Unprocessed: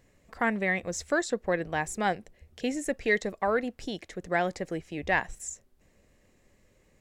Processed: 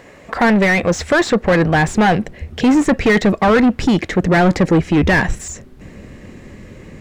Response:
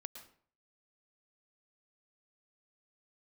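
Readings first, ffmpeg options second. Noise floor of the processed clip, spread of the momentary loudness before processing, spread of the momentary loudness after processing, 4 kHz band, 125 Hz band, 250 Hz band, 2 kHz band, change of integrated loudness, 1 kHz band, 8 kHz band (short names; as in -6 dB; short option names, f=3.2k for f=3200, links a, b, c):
-42 dBFS, 11 LU, 9 LU, +15.5 dB, +22.5 dB, +20.0 dB, +12.5 dB, +15.5 dB, +13.5 dB, +9.0 dB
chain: -filter_complex "[0:a]asubboost=boost=7.5:cutoff=230,asplit=2[a][b];[b]highpass=f=720:p=1,volume=29dB,asoftclip=type=tanh:threshold=-11.5dB[c];[a][c]amix=inputs=2:normalize=0,lowpass=f=1.3k:p=1,volume=-6dB,acrossover=split=7400[d][e];[e]acompressor=threshold=-48dB:ratio=4:attack=1:release=60[f];[d][f]amix=inputs=2:normalize=0,volume=8dB"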